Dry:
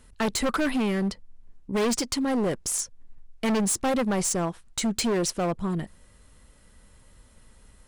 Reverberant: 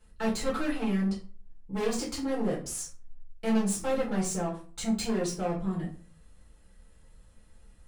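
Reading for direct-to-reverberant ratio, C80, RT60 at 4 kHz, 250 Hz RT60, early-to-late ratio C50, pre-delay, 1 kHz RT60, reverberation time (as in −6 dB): −7.0 dB, 14.0 dB, 0.25 s, 0.50 s, 8.0 dB, 5 ms, 0.40 s, 0.40 s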